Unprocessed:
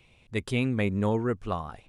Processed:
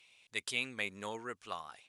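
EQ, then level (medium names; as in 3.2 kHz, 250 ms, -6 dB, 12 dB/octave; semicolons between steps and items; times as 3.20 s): band-pass filter 6.8 kHz, Q 0.54; +3.5 dB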